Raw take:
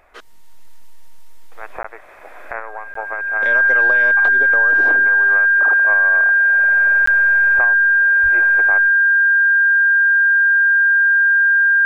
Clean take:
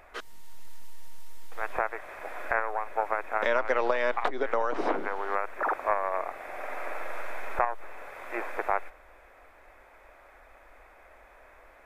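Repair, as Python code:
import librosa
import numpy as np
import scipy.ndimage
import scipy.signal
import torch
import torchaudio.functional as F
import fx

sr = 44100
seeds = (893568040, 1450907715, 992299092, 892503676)

y = fx.notch(x, sr, hz=1600.0, q=30.0)
y = fx.fix_deplosive(y, sr, at_s=(8.22,))
y = fx.fix_interpolate(y, sr, at_s=(1.83, 2.94, 7.06), length_ms=14.0)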